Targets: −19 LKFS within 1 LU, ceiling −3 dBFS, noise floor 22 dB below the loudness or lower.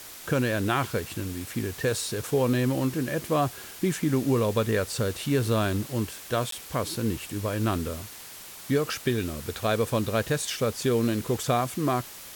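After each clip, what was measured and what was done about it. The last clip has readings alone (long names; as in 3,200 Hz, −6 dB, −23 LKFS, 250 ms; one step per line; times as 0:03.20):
number of dropouts 1; longest dropout 13 ms; background noise floor −44 dBFS; target noise floor −50 dBFS; integrated loudness −27.5 LKFS; sample peak −12.5 dBFS; target loudness −19.0 LKFS
→ repair the gap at 0:06.51, 13 ms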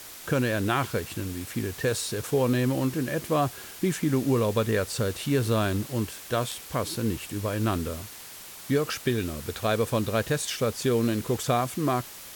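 number of dropouts 0; background noise floor −44 dBFS; target noise floor −50 dBFS
→ noise reduction from a noise print 6 dB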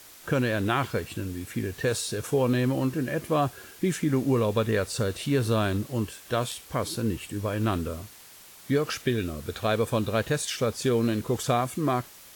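background noise floor −49 dBFS; target noise floor −50 dBFS
→ noise reduction from a noise print 6 dB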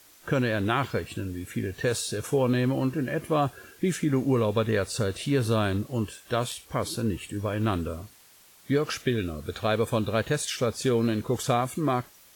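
background noise floor −55 dBFS; integrated loudness −27.5 LKFS; sample peak −13.0 dBFS; target loudness −19.0 LKFS
→ level +8.5 dB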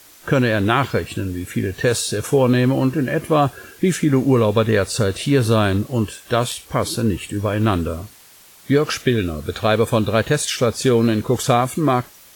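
integrated loudness −19.0 LKFS; sample peak −4.5 dBFS; background noise floor −47 dBFS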